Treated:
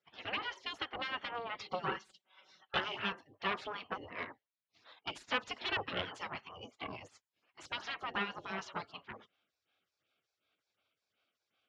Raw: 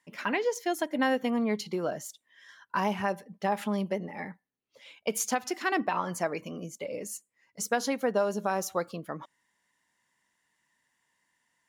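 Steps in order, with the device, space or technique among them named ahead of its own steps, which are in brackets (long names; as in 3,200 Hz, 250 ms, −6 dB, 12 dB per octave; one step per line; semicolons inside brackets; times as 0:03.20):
vibe pedal into a guitar amplifier (phaser with staggered stages 2.7 Hz; tube saturation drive 27 dB, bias 0.35; loudspeaker in its box 87–4,300 Hz, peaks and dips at 100 Hz +9 dB, 780 Hz +7 dB, 1,200 Hz +8 dB, 3,000 Hz +9 dB)
gate on every frequency bin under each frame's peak −15 dB weak
0:01.63–0:02.77: comb filter 5.3 ms, depth 87%
level +5.5 dB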